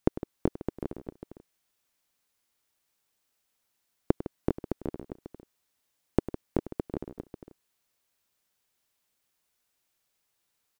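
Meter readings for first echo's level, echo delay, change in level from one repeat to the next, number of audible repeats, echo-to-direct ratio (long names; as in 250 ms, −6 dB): −15.0 dB, 100 ms, repeats not evenly spaced, 3, −6.5 dB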